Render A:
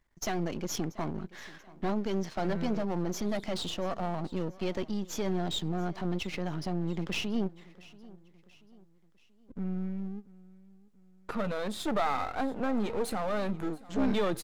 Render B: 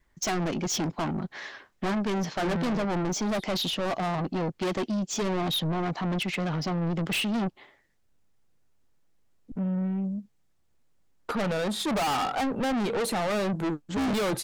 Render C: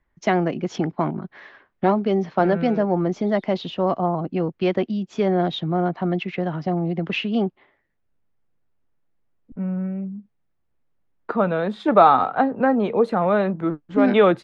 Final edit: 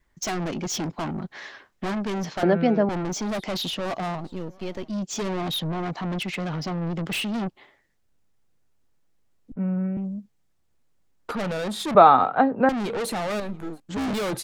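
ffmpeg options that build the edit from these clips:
-filter_complex "[2:a]asplit=3[s0][s1][s2];[0:a]asplit=2[s3][s4];[1:a]asplit=6[s5][s6][s7][s8][s9][s10];[s5]atrim=end=2.432[s11];[s0]atrim=start=2.428:end=2.892[s12];[s6]atrim=start=2.888:end=4.22[s13];[s3]atrim=start=4.12:end=4.96[s14];[s7]atrim=start=4.86:end=9.532[s15];[s1]atrim=start=9.528:end=9.972[s16];[s8]atrim=start=9.968:end=11.952[s17];[s2]atrim=start=11.948:end=12.692[s18];[s9]atrim=start=12.688:end=13.402[s19];[s4]atrim=start=13.398:end=13.802[s20];[s10]atrim=start=13.798[s21];[s11][s12]acrossfade=d=0.004:c1=hsin:c2=hsin[s22];[s22][s13]acrossfade=d=0.004:c1=hsin:c2=hsin[s23];[s23][s14]acrossfade=d=0.1:c1=tri:c2=tri[s24];[s24][s15]acrossfade=d=0.1:c1=tri:c2=tri[s25];[s25][s16]acrossfade=d=0.004:c1=hsin:c2=hsin[s26];[s26][s17]acrossfade=d=0.004:c1=hsin:c2=hsin[s27];[s27][s18]acrossfade=d=0.004:c1=hsin:c2=hsin[s28];[s28][s19]acrossfade=d=0.004:c1=hsin:c2=hsin[s29];[s29][s20]acrossfade=d=0.004:c1=hsin:c2=hsin[s30];[s30][s21]acrossfade=d=0.004:c1=hsin:c2=hsin"

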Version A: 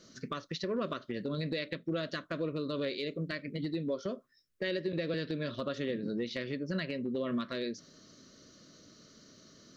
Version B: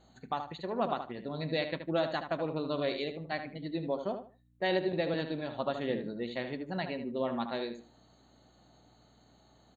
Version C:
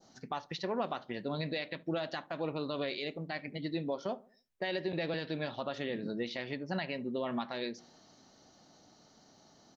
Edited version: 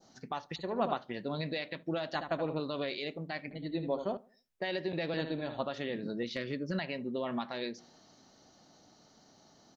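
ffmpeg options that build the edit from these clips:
-filter_complex "[1:a]asplit=4[s0][s1][s2][s3];[2:a]asplit=6[s4][s5][s6][s7][s8][s9];[s4]atrim=end=0.562[s10];[s0]atrim=start=0.558:end=0.972[s11];[s5]atrim=start=0.968:end=2.152[s12];[s1]atrim=start=2.148:end=2.602[s13];[s6]atrim=start=2.598:end=3.512[s14];[s2]atrim=start=3.508:end=4.172[s15];[s7]atrim=start=4.168:end=5.172[s16];[s3]atrim=start=5.168:end=5.652[s17];[s8]atrim=start=5.648:end=6.232[s18];[0:a]atrim=start=6.228:end=6.792[s19];[s9]atrim=start=6.788[s20];[s10][s11]acrossfade=d=0.004:c1=hsin:c2=hsin[s21];[s21][s12]acrossfade=d=0.004:c1=hsin:c2=hsin[s22];[s22][s13]acrossfade=d=0.004:c1=hsin:c2=hsin[s23];[s23][s14]acrossfade=d=0.004:c1=hsin:c2=hsin[s24];[s24][s15]acrossfade=d=0.004:c1=hsin:c2=hsin[s25];[s25][s16]acrossfade=d=0.004:c1=hsin:c2=hsin[s26];[s26][s17]acrossfade=d=0.004:c1=hsin:c2=hsin[s27];[s27][s18]acrossfade=d=0.004:c1=hsin:c2=hsin[s28];[s28][s19]acrossfade=d=0.004:c1=hsin:c2=hsin[s29];[s29][s20]acrossfade=d=0.004:c1=hsin:c2=hsin"

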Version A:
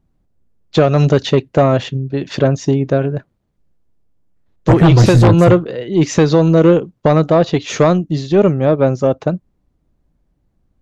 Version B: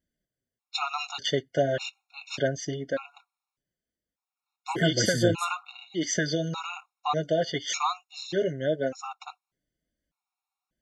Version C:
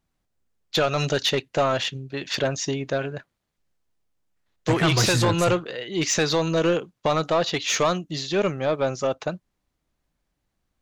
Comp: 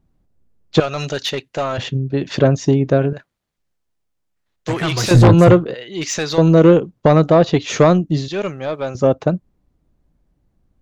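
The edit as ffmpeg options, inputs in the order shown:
-filter_complex "[2:a]asplit=4[s0][s1][s2][s3];[0:a]asplit=5[s4][s5][s6][s7][s8];[s4]atrim=end=0.802[s9];[s0]atrim=start=0.798:end=1.782[s10];[s5]atrim=start=1.778:end=3.132[s11];[s1]atrim=start=3.128:end=5.112[s12];[s6]atrim=start=5.108:end=5.742[s13];[s2]atrim=start=5.738:end=6.382[s14];[s7]atrim=start=6.378:end=8.282[s15];[s3]atrim=start=8.278:end=8.952[s16];[s8]atrim=start=8.948[s17];[s9][s10]acrossfade=d=0.004:c1=hsin:c2=hsin[s18];[s18][s11]acrossfade=d=0.004:c1=hsin:c2=hsin[s19];[s19][s12]acrossfade=d=0.004:c1=hsin:c2=hsin[s20];[s20][s13]acrossfade=d=0.004:c1=hsin:c2=hsin[s21];[s21][s14]acrossfade=d=0.004:c1=hsin:c2=hsin[s22];[s22][s15]acrossfade=d=0.004:c1=hsin:c2=hsin[s23];[s23][s16]acrossfade=d=0.004:c1=hsin:c2=hsin[s24];[s24][s17]acrossfade=d=0.004:c1=hsin:c2=hsin"

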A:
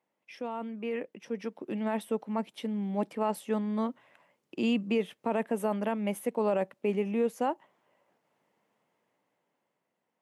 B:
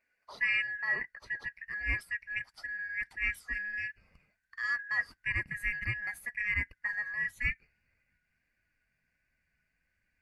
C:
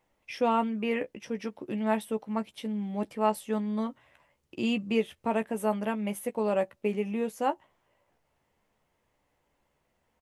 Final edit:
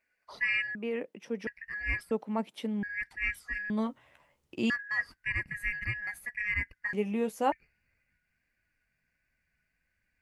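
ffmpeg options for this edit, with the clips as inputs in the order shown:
-filter_complex "[0:a]asplit=2[s0][s1];[2:a]asplit=2[s2][s3];[1:a]asplit=5[s4][s5][s6][s7][s8];[s4]atrim=end=0.752[s9];[s0]atrim=start=0.748:end=1.472[s10];[s5]atrim=start=1.468:end=2.112[s11];[s1]atrim=start=2.108:end=2.832[s12];[s6]atrim=start=2.828:end=3.702[s13];[s2]atrim=start=3.698:end=4.702[s14];[s7]atrim=start=4.698:end=6.932[s15];[s3]atrim=start=6.928:end=7.522[s16];[s8]atrim=start=7.518[s17];[s9][s10]acrossfade=d=0.004:c1=hsin:c2=hsin[s18];[s18][s11]acrossfade=d=0.004:c1=hsin:c2=hsin[s19];[s19][s12]acrossfade=d=0.004:c1=hsin:c2=hsin[s20];[s20][s13]acrossfade=d=0.004:c1=hsin:c2=hsin[s21];[s21][s14]acrossfade=d=0.004:c1=hsin:c2=hsin[s22];[s22][s15]acrossfade=d=0.004:c1=hsin:c2=hsin[s23];[s23][s16]acrossfade=d=0.004:c1=hsin:c2=hsin[s24];[s24][s17]acrossfade=d=0.004:c1=hsin:c2=hsin"

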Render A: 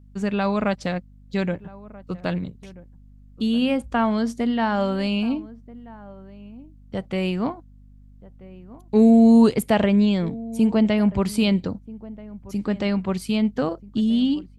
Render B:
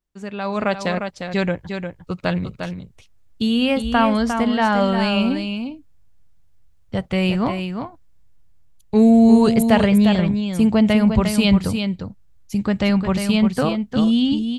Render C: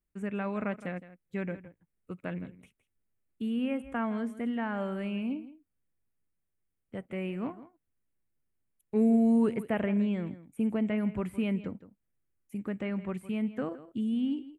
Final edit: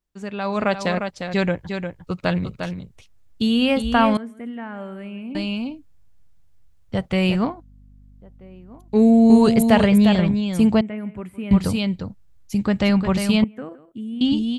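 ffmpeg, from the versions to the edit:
-filter_complex "[2:a]asplit=3[s0][s1][s2];[1:a]asplit=5[s3][s4][s5][s6][s7];[s3]atrim=end=4.172[s8];[s0]atrim=start=4.168:end=5.352[s9];[s4]atrim=start=5.348:end=7.452[s10];[0:a]atrim=start=7.448:end=9.302[s11];[s5]atrim=start=9.298:end=10.812[s12];[s1]atrim=start=10.808:end=11.512[s13];[s6]atrim=start=11.508:end=13.442[s14];[s2]atrim=start=13.438:end=14.212[s15];[s7]atrim=start=14.208[s16];[s8][s9]acrossfade=d=0.004:c1=hsin:c2=hsin[s17];[s17][s10]acrossfade=d=0.004:c1=hsin:c2=hsin[s18];[s18][s11]acrossfade=d=0.004:c1=hsin:c2=hsin[s19];[s19][s12]acrossfade=d=0.004:c1=hsin:c2=hsin[s20];[s20][s13]acrossfade=d=0.004:c1=hsin:c2=hsin[s21];[s21][s14]acrossfade=d=0.004:c1=hsin:c2=hsin[s22];[s22][s15]acrossfade=d=0.004:c1=hsin:c2=hsin[s23];[s23][s16]acrossfade=d=0.004:c1=hsin:c2=hsin"

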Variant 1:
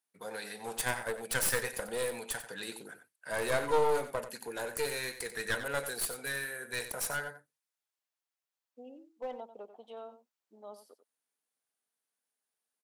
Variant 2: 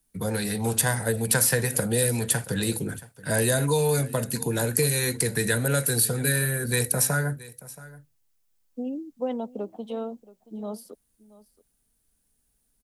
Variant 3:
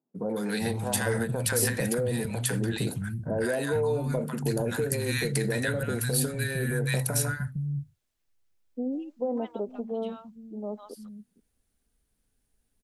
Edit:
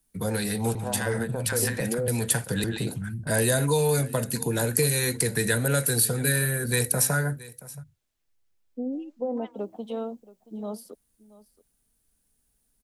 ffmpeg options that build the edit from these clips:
-filter_complex "[2:a]asplit=3[s0][s1][s2];[1:a]asplit=4[s3][s4][s5][s6];[s3]atrim=end=0.752[s7];[s0]atrim=start=0.748:end=2.082[s8];[s4]atrim=start=2.078:end=2.642[s9];[s1]atrim=start=2.638:end=3.272[s10];[s5]atrim=start=3.268:end=7.84[s11];[s2]atrim=start=7.74:end=9.59[s12];[s6]atrim=start=9.49[s13];[s7][s8]acrossfade=d=0.004:c1=hsin:c2=hsin[s14];[s14][s9]acrossfade=d=0.004:c1=hsin:c2=hsin[s15];[s15][s10]acrossfade=d=0.004:c1=hsin:c2=hsin[s16];[s16][s11]acrossfade=d=0.004:c1=hsin:c2=hsin[s17];[s17][s12]acrossfade=d=0.1:c1=tri:c2=tri[s18];[s18][s13]acrossfade=d=0.1:c1=tri:c2=tri"

